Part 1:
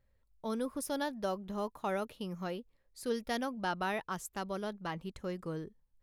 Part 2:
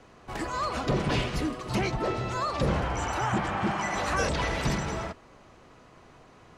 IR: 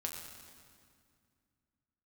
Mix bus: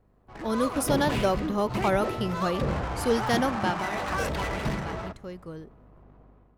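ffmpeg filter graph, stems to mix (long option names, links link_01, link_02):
-filter_complex "[0:a]asoftclip=type=hard:threshold=-26dB,volume=-1dB,afade=type=out:start_time=3.46:duration=0.41:silence=0.281838[link_01];[1:a]aeval=exprs='val(0)+0.00251*(sin(2*PI*50*n/s)+sin(2*PI*2*50*n/s)/2+sin(2*PI*3*50*n/s)/3+sin(2*PI*4*50*n/s)/4+sin(2*PI*5*50*n/s)/5)':channel_layout=same,adynamicsmooth=sensitivity=8:basefreq=730,volume=-13.5dB,asplit=2[link_02][link_03];[link_03]volume=-18dB[link_04];[2:a]atrim=start_sample=2205[link_05];[link_04][link_05]afir=irnorm=-1:irlink=0[link_06];[link_01][link_02][link_06]amix=inputs=3:normalize=0,dynaudnorm=framelen=300:gausssize=3:maxgain=11dB"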